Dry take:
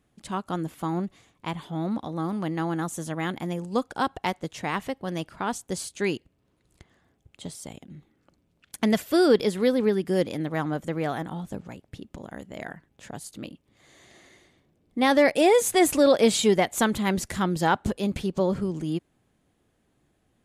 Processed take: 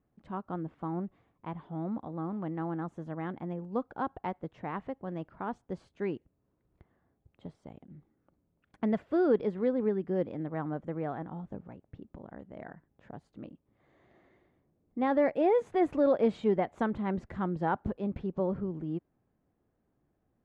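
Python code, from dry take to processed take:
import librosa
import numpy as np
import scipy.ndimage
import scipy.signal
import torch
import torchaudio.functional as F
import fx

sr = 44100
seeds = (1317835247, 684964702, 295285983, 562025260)

y = scipy.signal.sosfilt(scipy.signal.butter(2, 1300.0, 'lowpass', fs=sr, output='sos'), x)
y = y * 10.0 ** (-6.5 / 20.0)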